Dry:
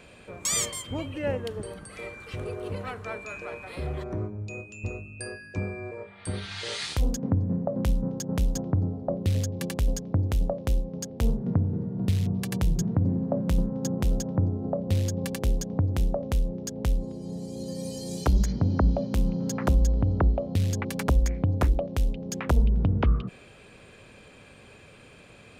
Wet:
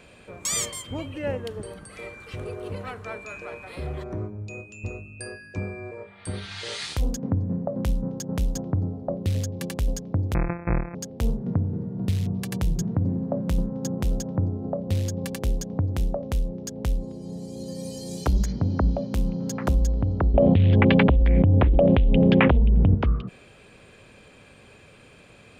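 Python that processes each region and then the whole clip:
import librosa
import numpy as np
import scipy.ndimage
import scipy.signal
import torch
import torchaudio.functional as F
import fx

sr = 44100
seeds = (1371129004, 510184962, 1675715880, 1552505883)

y = fx.chain(x, sr, fx.sample_sort(block=256),
    fx.brickwall_lowpass(high_hz=2600.0), at=(10.34, 10.95))
y = fx.chain(y, sr, fx.steep_lowpass(hz=3400.0, slope=48),
    fx.peak_eq(hz=1300.0, db=-5.5, octaves=0.9),
    fx.env_flatten(amount_pct=100), at=(20.34, 22.95))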